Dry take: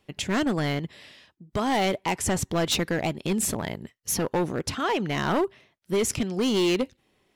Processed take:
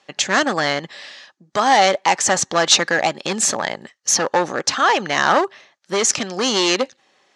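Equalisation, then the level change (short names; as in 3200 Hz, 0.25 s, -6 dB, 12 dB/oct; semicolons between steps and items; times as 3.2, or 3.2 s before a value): speaker cabinet 200–7500 Hz, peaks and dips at 560 Hz +8 dB, 810 Hz +10 dB, 1200 Hz +9 dB, 1700 Hz +9 dB, 4300 Hz +4 dB, 6300 Hz +6 dB; high shelf 2100 Hz +11 dB; +1.0 dB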